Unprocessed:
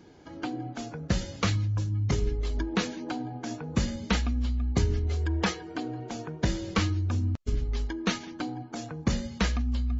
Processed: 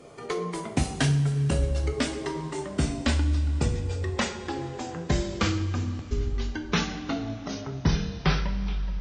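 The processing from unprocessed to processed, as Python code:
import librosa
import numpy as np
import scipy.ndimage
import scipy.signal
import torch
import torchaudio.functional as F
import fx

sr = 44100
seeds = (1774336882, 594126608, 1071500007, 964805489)

y = fx.speed_glide(x, sr, from_pct=146, to_pct=76)
y = fx.rider(y, sr, range_db=5, speed_s=2.0)
y = fx.rev_double_slope(y, sr, seeds[0], early_s=0.48, late_s=3.8, knee_db=-15, drr_db=3.5)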